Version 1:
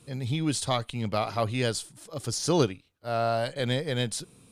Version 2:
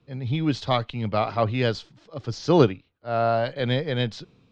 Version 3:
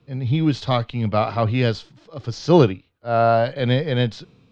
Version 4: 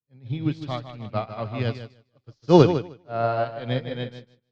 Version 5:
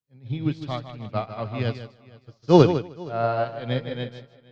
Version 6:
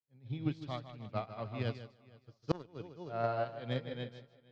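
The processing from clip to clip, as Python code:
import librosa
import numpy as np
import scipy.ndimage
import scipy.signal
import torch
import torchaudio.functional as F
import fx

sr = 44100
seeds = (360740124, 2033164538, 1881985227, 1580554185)

y1 = scipy.signal.sosfilt(scipy.signal.bessel(8, 3200.0, 'lowpass', norm='mag', fs=sr, output='sos'), x)
y1 = fx.band_widen(y1, sr, depth_pct=40)
y1 = y1 * librosa.db_to_amplitude(4.5)
y2 = fx.hpss(y1, sr, part='harmonic', gain_db=6)
y3 = fx.echo_feedback(y2, sr, ms=154, feedback_pct=43, wet_db=-4.5)
y3 = fx.upward_expand(y3, sr, threshold_db=-37.0, expansion=2.5)
y3 = y3 * librosa.db_to_amplitude(1.0)
y4 = fx.echo_feedback(y3, sr, ms=467, feedback_pct=20, wet_db=-23)
y5 = fx.cheby_harmonics(y4, sr, harmonics=(3, 7), levels_db=(-14, -36), full_scale_db=-1.0)
y5 = fx.gate_flip(y5, sr, shuts_db=-15.0, range_db=-32)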